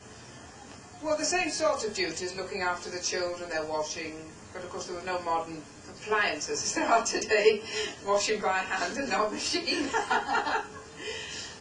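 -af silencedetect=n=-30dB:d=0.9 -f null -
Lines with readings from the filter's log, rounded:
silence_start: 0.00
silence_end: 1.05 | silence_duration: 1.05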